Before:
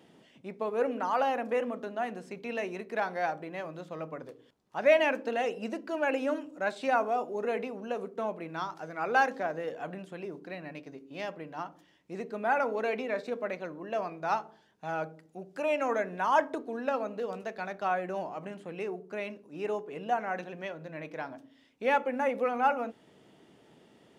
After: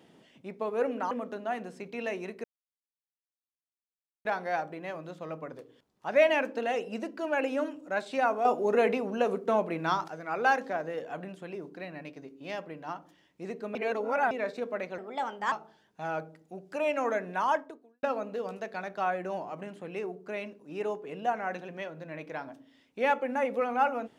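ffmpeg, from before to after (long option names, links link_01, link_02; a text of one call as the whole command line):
ffmpeg -i in.wav -filter_complex "[0:a]asplit=10[link_01][link_02][link_03][link_04][link_05][link_06][link_07][link_08][link_09][link_10];[link_01]atrim=end=1.112[link_11];[link_02]atrim=start=1.618:end=2.95,asetpts=PTS-STARTPTS,afade=type=out:start_time=1.328:duration=0.004:curve=hsin,apad=pad_dur=1.81[link_12];[link_03]atrim=start=2.95:end=7.152,asetpts=PTS-STARTPTS,afade=type=in:duration=0.004:curve=hsin[link_13];[link_04]atrim=start=7.148:end=8.782,asetpts=PTS-STARTPTS,volume=7dB[link_14];[link_05]atrim=start=8.778:end=12.452[link_15];[link_06]atrim=start=12.448:end=13.012,asetpts=PTS-STARTPTS,areverse[link_16];[link_07]atrim=start=13.008:end=13.684[link_17];[link_08]atrim=start=13.68:end=14.36,asetpts=PTS-STARTPTS,asetrate=55566,aresample=44100[link_18];[link_09]atrim=start=14.356:end=16.87,asetpts=PTS-STARTPTS,afade=type=out:start_time=1.924:duration=0.59:curve=qua[link_19];[link_10]atrim=start=16.87,asetpts=PTS-STARTPTS,afade=type=in:duration=0.004:curve=hsin[link_20];[link_12][link_13]concat=n=2:v=0:a=1[link_21];[link_11][link_21]acrossfade=duration=0.004:curve1=hsin:curve2=hsin[link_22];[link_22][link_14]acrossfade=duration=0.004:curve1=hsin:curve2=hsin[link_23];[link_23][link_15]acrossfade=duration=0.004:curve1=hsin:curve2=hsin[link_24];[link_24][link_16]acrossfade=duration=0.004:curve1=hsin:curve2=hsin[link_25];[link_25][link_17]acrossfade=duration=0.004:curve1=hsin:curve2=hsin[link_26];[link_26][link_18]acrossfade=duration=0.004:curve1=hsin:curve2=hsin[link_27];[link_19][link_20]concat=n=2:v=0:a=1[link_28];[link_27][link_28]acrossfade=duration=0.004:curve1=hsin:curve2=hsin" out.wav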